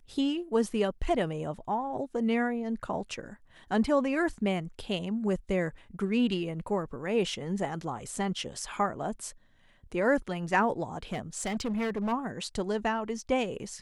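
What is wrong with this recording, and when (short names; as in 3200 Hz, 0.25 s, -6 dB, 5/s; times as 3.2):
11.12–12.13 clipped -27.5 dBFS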